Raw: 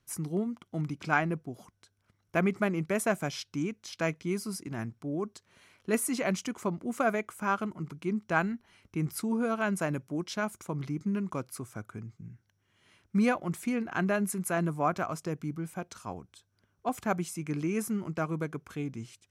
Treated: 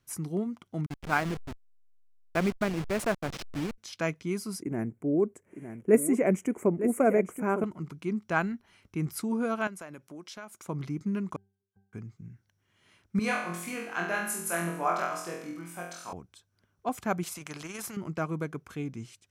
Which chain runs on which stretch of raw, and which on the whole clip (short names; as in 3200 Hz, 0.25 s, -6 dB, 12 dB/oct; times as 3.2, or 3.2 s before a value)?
0.86–3.78 level-crossing sampler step -31.5 dBFS + gate -41 dBFS, range -16 dB + high shelf 11000 Hz -11 dB
4.62–7.64 EQ curve 110 Hz 0 dB, 430 Hz +10 dB, 630 Hz +4 dB, 1200 Hz -6 dB, 2200 Hz 0 dB, 4200 Hz -29 dB, 7600 Hz 0 dB + echo 0.907 s -10 dB
9.67–10.65 HPF 390 Hz 6 dB/oct + compressor 2.5:1, threshold -43 dBFS + mismatched tape noise reduction encoder only
11.36–11.93 flipped gate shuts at -31 dBFS, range -35 dB + octave resonator G, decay 0.45 s
13.19–16.13 HPF 740 Hz 6 dB/oct + flutter echo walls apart 4 m, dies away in 0.66 s
17.23–17.97 AM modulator 21 Hz, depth 25% + spectral compressor 2:1
whole clip: dry